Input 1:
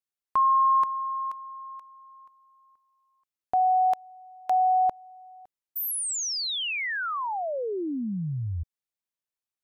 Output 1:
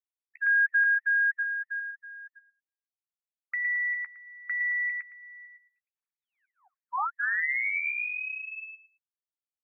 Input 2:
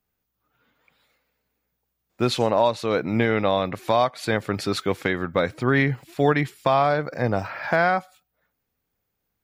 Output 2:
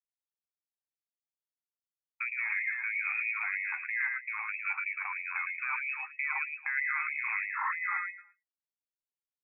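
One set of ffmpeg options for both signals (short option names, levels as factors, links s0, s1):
-filter_complex "[0:a]afftfilt=real='re*gte(hypot(re,im),0.00708)':imag='im*gte(hypot(re,im),0.00708)':win_size=1024:overlap=0.75,highpass=f=560:p=1,agate=range=0.00447:threshold=0.00224:ratio=16:release=115:detection=peak,alimiter=limit=0.178:level=0:latency=1:release=91,acompressor=threshold=0.0355:ratio=16:attack=0.43:release=84:knee=6:detection=peak,lowpass=f=2300:t=q:w=0.5098,lowpass=f=2300:t=q:w=0.6013,lowpass=f=2300:t=q:w=0.9,lowpass=f=2300:t=q:w=2.563,afreqshift=-2700,asplit=2[s0][s1];[s1]adelay=13,volume=0.282[s2];[s0][s2]amix=inputs=2:normalize=0,aecho=1:1:111|222|333:0.708|0.149|0.0312,afftfilt=real='re*gte(b*sr/1024,720*pow(1900/720,0.5+0.5*sin(2*PI*3.1*pts/sr)))':imag='im*gte(b*sr/1024,720*pow(1900/720,0.5+0.5*sin(2*PI*3.1*pts/sr)))':win_size=1024:overlap=0.75,volume=1.5"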